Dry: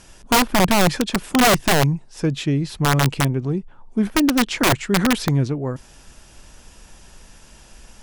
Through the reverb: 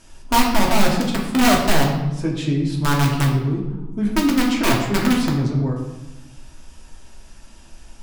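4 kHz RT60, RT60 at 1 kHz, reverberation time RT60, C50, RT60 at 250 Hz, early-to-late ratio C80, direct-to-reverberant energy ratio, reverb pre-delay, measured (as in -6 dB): 0.75 s, 1.0 s, 1.1 s, 4.0 dB, 1.5 s, 6.5 dB, -2.0 dB, 3 ms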